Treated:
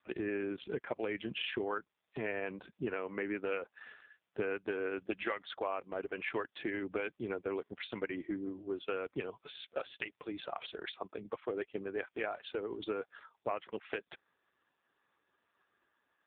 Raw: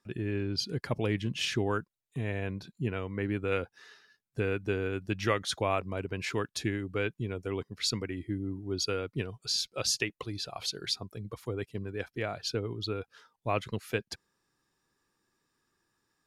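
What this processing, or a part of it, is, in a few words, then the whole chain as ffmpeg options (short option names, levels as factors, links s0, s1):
voicemail: -filter_complex "[0:a]asettb=1/sr,asplit=3[s0][s1][s2];[s0]atrim=end=6.444[s3];[s1]atrim=start=6.44:end=7.8,asetpts=PTS-STARTPTS,afade=t=in:d=0.004:c=qsin,afade=t=out:st=1.356:d=0.004:c=qsin,lowshelf=f=170:g=4.5[s4];[s2]atrim=start=7.796[s5];[s3][s4]acrossfade=d=0.004:c1=hsin:c2=qsin[s6];[s6][s5]acrossfade=d=0.004:c1=qsin:c2=hsin,highpass=410,lowpass=2900,acompressor=threshold=0.0112:ratio=8,volume=2.37" -ar 8000 -c:a libopencore_amrnb -b:a 4750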